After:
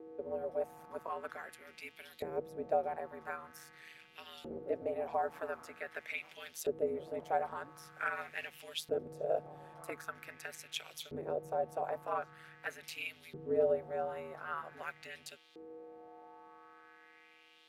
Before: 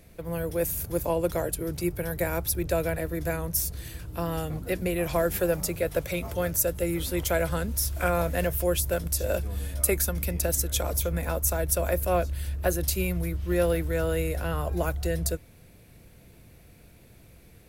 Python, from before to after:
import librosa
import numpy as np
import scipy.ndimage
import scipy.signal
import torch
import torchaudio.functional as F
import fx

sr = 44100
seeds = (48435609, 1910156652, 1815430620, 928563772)

y = fx.dmg_buzz(x, sr, base_hz=400.0, harmonics=33, level_db=-45.0, tilt_db=-8, odd_only=False)
y = y * np.sin(2.0 * np.pi * 79.0 * np.arange(len(y)) / sr)
y = fx.filter_lfo_bandpass(y, sr, shape='saw_up', hz=0.45, low_hz=390.0, high_hz=3800.0, q=2.9)
y = y * librosa.db_to_amplitude(1.0)